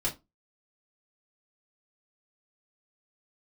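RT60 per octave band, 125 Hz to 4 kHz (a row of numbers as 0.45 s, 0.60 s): 0.25 s, 0.30 s, 0.20 s, 0.20 s, 0.15 s, 0.15 s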